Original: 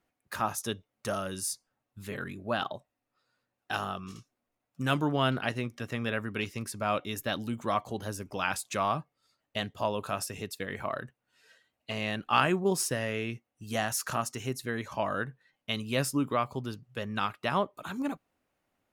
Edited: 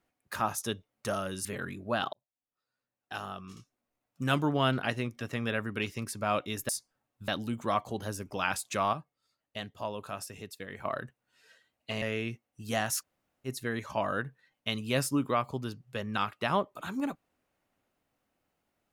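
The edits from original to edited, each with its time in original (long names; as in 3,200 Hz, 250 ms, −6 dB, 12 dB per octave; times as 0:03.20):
0:01.45–0:02.04: move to 0:07.28
0:02.72–0:04.83: fade in
0:08.93–0:10.85: clip gain −6 dB
0:12.02–0:13.04: remove
0:14.03–0:14.49: fill with room tone, crossfade 0.06 s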